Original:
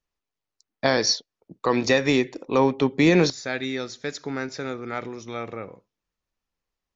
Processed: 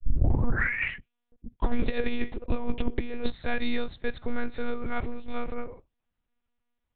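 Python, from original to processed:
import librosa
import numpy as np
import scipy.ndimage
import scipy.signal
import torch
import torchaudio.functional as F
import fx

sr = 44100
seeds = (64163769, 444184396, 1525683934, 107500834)

p1 = fx.tape_start_head(x, sr, length_s=1.9)
p2 = np.clip(p1, -10.0 ** (-20.0 / 20.0), 10.0 ** (-20.0 / 20.0))
p3 = p1 + (p2 * librosa.db_to_amplitude(-5.5))
p4 = fx.lpc_monotone(p3, sr, seeds[0], pitch_hz=240.0, order=8)
p5 = fx.over_compress(p4, sr, threshold_db=-20.0, ratio=-0.5)
p6 = fx.low_shelf(p5, sr, hz=120.0, db=10.0)
y = p6 * librosa.db_to_amplitude(-7.5)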